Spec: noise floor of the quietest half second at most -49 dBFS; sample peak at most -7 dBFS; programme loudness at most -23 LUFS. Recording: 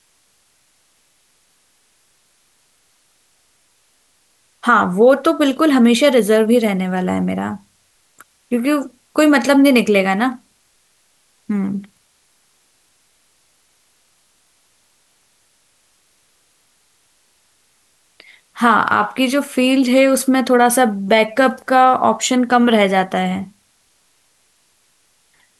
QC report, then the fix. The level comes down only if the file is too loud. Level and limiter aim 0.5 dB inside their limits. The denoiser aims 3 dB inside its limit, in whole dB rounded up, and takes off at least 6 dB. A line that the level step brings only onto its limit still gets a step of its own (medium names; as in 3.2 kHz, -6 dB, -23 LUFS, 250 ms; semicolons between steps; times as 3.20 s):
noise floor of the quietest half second -59 dBFS: pass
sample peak -2.0 dBFS: fail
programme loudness -15.0 LUFS: fail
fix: trim -8.5 dB